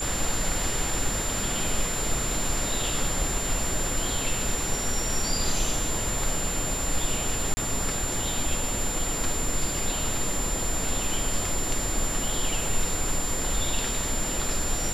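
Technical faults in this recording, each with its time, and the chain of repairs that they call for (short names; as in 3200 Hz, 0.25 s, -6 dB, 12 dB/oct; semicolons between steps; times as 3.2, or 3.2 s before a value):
tone 7200 Hz -30 dBFS
7.54–7.57 gap 30 ms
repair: notch 7200 Hz, Q 30; interpolate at 7.54, 30 ms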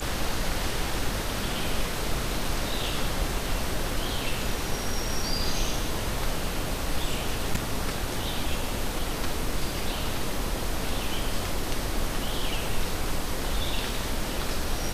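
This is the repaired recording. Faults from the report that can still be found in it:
none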